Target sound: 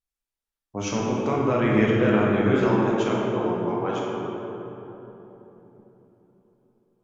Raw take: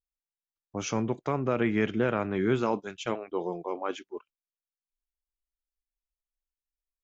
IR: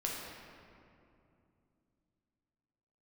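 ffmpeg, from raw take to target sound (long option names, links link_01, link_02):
-filter_complex "[0:a]asettb=1/sr,asplit=3[link_01][link_02][link_03];[link_01]atrim=end=0.984[link_04];[link_02]atrim=start=0.98:end=2.5,asetpts=PTS-STARTPTS,afade=type=in:duration=0.004:curve=qsin,afade=type=out:start_time=1.516:duration=0.004:curve=qsin,highshelf=frequency=6300:gain=9[link_05];[link_03]atrim=start=2.496[link_06];[link_04][link_05]acrossfade=duration=0.004:curve1=hsin:curve2=qsin[link_07];[link_07][link_06]acrossfade=duration=0.004:curve1=qsin:curve2=hsin[link_08];[1:a]atrim=start_sample=2205,asetrate=29106,aresample=44100[link_09];[link_08][link_09]afir=irnorm=-1:irlink=0"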